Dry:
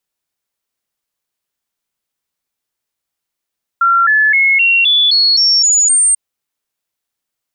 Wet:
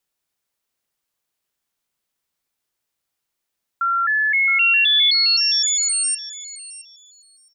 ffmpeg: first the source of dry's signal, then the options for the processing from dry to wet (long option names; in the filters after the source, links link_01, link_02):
-f lavfi -i "aevalsrc='0.422*clip(min(mod(t,0.26),0.26-mod(t,0.26))/0.005,0,1)*sin(2*PI*1370*pow(2,floor(t/0.26)/3)*mod(t,0.26))':duration=2.34:sample_rate=44100"
-filter_complex "[0:a]acrossover=split=3400[link_01][link_02];[link_01]alimiter=limit=-17dB:level=0:latency=1:release=365[link_03];[link_02]acompressor=threshold=-21dB:ratio=6[link_04];[link_03][link_04]amix=inputs=2:normalize=0,asplit=2[link_05][link_06];[link_06]adelay=667,lowpass=frequency=4900:poles=1,volume=-11dB,asplit=2[link_07][link_08];[link_08]adelay=667,lowpass=frequency=4900:poles=1,volume=0.28,asplit=2[link_09][link_10];[link_10]adelay=667,lowpass=frequency=4900:poles=1,volume=0.28[link_11];[link_05][link_07][link_09][link_11]amix=inputs=4:normalize=0"